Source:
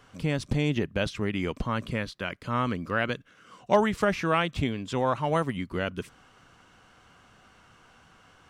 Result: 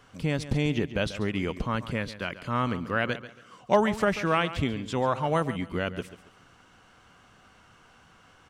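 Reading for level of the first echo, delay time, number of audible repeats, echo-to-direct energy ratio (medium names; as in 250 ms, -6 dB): -14.0 dB, 139 ms, 2, -13.5 dB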